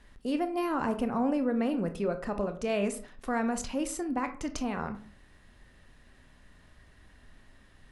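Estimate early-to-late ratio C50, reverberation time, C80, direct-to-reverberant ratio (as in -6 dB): 13.0 dB, 0.40 s, 17.0 dB, 8.0 dB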